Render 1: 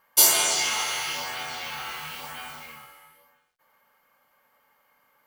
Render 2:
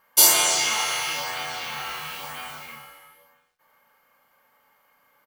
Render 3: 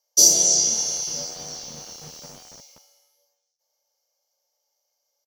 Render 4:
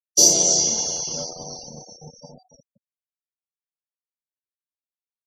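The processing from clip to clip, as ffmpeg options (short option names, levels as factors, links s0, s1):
-filter_complex "[0:a]asplit=2[s0][s1];[s1]adelay=35,volume=0.447[s2];[s0][s2]amix=inputs=2:normalize=0,volume=1.19"
-filter_complex "[0:a]firequalizer=gain_entry='entry(110,0);entry(170,14);entry(300,6);entry(560,5);entry(1100,-26);entry(1600,-28);entry(5800,15);entry(8300,-9)':delay=0.05:min_phase=1,acrossover=split=760|5300[s0][s1][s2];[s0]aeval=exprs='val(0)*gte(abs(val(0)),0.0133)':c=same[s3];[s3][s1][s2]amix=inputs=3:normalize=0,volume=0.668"
-filter_complex "[0:a]asplit=2[s0][s1];[s1]acrusher=bits=4:mix=0:aa=0.000001,volume=0.316[s2];[s0][s2]amix=inputs=2:normalize=0,lowpass=f=3200:p=1,afftfilt=real='re*gte(hypot(re,im),0.0126)':imag='im*gte(hypot(re,im),0.0126)':win_size=1024:overlap=0.75,volume=1.5"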